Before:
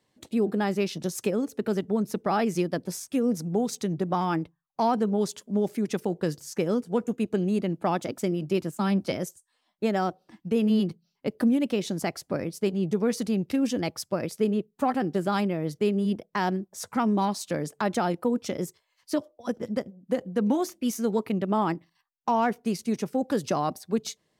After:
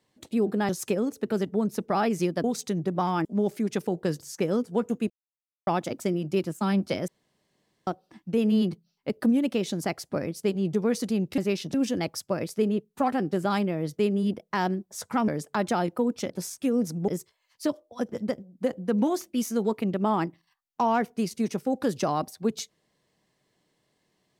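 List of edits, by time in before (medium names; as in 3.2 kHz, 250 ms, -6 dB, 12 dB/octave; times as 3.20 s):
0.69–1.05 s: move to 13.56 s
2.80–3.58 s: move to 18.56 s
4.39–5.43 s: delete
7.28–7.85 s: mute
9.26–10.05 s: room tone
17.10–17.54 s: delete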